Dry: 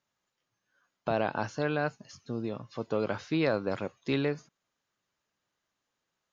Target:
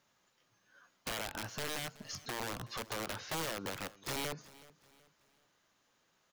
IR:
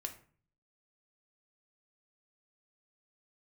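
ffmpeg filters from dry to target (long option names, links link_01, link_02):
-filter_complex "[0:a]equalizer=frequency=63:width_type=o:width=1.4:gain=-3.5,acompressor=threshold=-41dB:ratio=10,aeval=exprs='(mod(112*val(0)+1,2)-1)/112':channel_layout=same,asplit=2[link_01][link_02];[link_02]aecho=0:1:375|750|1125:0.0944|0.0359|0.0136[link_03];[link_01][link_03]amix=inputs=2:normalize=0,volume=9dB"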